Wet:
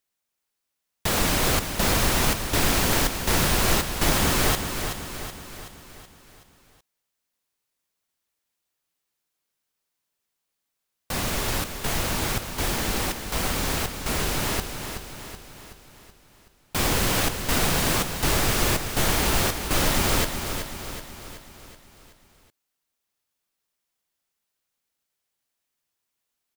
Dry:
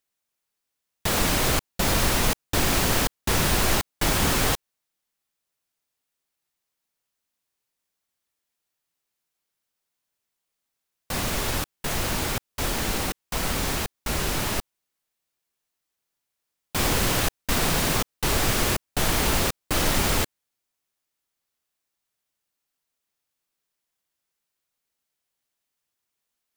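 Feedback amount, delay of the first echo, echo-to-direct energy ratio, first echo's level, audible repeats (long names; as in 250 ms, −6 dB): 53%, 376 ms, −6.5 dB, −8.0 dB, 5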